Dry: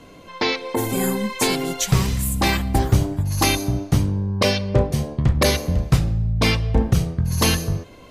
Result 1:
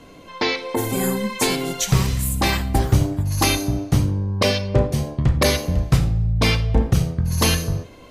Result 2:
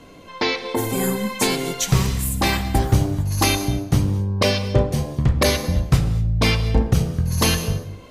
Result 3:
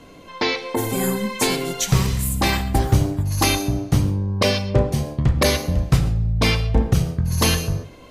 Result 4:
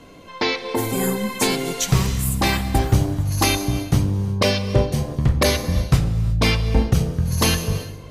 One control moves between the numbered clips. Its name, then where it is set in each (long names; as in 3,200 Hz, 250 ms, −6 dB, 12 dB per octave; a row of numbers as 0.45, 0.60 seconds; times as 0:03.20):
reverb whose tail is shaped and stops, gate: 110, 260, 160, 390 milliseconds